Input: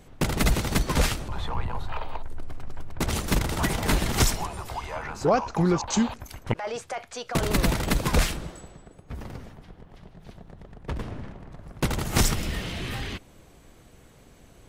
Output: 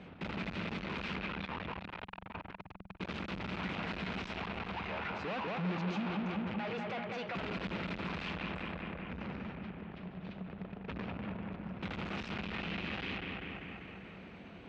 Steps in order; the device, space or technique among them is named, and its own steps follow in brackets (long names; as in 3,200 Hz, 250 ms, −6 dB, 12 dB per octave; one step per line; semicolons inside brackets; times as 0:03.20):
analogue delay pedal into a guitar amplifier (bucket-brigade delay 196 ms, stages 4,096, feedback 63%, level −7 dB; tube saturation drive 39 dB, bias 0.2; loudspeaker in its box 94–3,800 Hz, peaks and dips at 130 Hz −8 dB, 190 Hz +10 dB, 1,400 Hz +3 dB, 2,500 Hz +7 dB)
level +1.5 dB